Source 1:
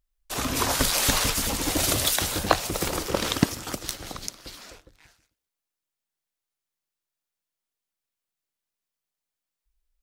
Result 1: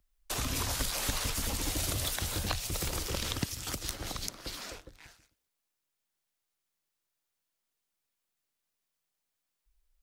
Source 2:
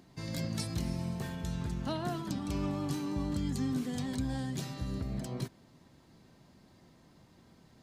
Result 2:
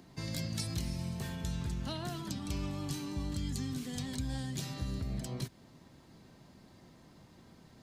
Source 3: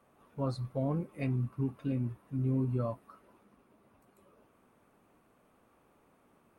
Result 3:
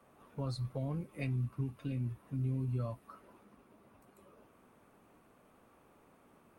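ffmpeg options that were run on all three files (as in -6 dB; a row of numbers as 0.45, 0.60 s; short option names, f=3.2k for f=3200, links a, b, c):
-filter_complex "[0:a]acrossover=split=120|2100[a][b][c];[a]acompressor=threshold=-36dB:ratio=4[d];[b]acompressor=threshold=-43dB:ratio=4[e];[c]acompressor=threshold=-38dB:ratio=4[f];[d][e][f]amix=inputs=3:normalize=0,volume=2.5dB"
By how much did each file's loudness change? -9.0, -2.0, -4.0 LU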